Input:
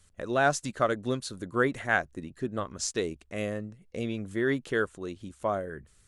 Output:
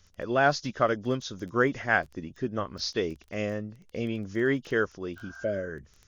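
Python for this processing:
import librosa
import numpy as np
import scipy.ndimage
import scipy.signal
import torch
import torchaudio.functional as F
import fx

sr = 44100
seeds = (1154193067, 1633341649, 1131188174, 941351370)

y = fx.freq_compress(x, sr, knee_hz=2800.0, ratio=1.5)
y = fx.spec_repair(y, sr, seeds[0], start_s=5.2, length_s=0.48, low_hz=660.0, high_hz=1600.0, source='after')
y = fx.dmg_crackle(y, sr, seeds[1], per_s=13.0, level_db=-40.0)
y = F.gain(torch.from_numpy(y), 1.5).numpy()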